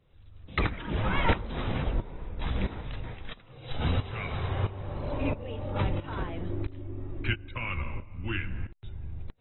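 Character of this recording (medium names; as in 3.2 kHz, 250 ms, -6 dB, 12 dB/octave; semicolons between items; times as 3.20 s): tremolo saw up 1.5 Hz, depth 85%; AAC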